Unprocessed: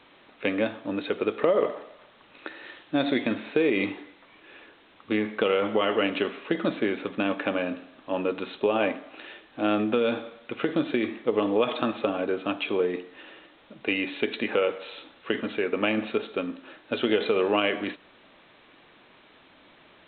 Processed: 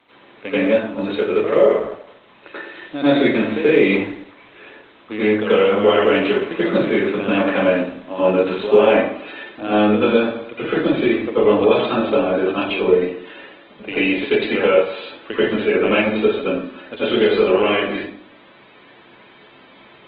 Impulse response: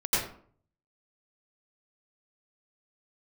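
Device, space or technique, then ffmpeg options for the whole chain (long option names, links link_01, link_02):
far-field microphone of a smart speaker: -filter_complex "[1:a]atrim=start_sample=2205[link_01];[0:a][link_01]afir=irnorm=-1:irlink=0,highpass=96,dynaudnorm=framelen=190:gausssize=13:maxgain=10dB,volume=-1.5dB" -ar 48000 -c:a libopus -b:a 16k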